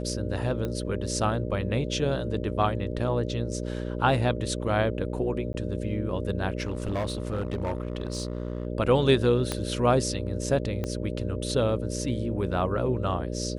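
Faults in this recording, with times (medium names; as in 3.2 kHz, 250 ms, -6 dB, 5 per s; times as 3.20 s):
buzz 60 Hz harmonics 10 -32 dBFS
0.65 s: pop -19 dBFS
5.53–5.54 s: dropout 10 ms
6.60–8.67 s: clipped -24.5 dBFS
9.52 s: pop -13 dBFS
10.84 s: pop -17 dBFS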